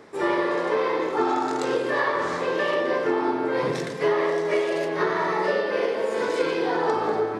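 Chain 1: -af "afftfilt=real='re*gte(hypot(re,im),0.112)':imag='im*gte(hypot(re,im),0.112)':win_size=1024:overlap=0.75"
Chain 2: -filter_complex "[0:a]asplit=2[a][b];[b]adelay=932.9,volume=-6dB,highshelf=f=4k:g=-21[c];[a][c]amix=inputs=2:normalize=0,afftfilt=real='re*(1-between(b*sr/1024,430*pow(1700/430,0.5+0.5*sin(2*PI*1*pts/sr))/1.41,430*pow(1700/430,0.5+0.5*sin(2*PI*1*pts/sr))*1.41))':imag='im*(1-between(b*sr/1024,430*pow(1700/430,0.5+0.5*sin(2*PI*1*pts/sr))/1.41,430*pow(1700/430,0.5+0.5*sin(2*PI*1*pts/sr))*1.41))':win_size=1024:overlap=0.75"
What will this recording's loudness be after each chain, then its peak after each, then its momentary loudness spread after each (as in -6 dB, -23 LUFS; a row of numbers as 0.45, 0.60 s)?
-25.0, -25.5 LUFS; -11.5, -10.0 dBFS; 2, 4 LU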